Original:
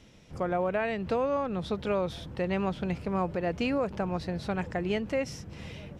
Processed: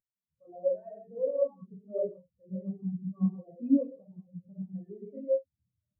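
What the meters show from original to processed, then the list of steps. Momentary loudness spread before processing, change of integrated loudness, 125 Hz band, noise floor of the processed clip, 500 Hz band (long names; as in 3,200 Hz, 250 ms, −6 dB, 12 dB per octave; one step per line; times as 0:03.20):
7 LU, −2.0 dB, −5.0 dB, below −85 dBFS, −2.5 dB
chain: upward compression, threshold −32 dBFS
reverb whose tail is shaped and stops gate 250 ms flat, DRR −4.5 dB
every bin expanded away from the loudest bin 4 to 1
level −2.5 dB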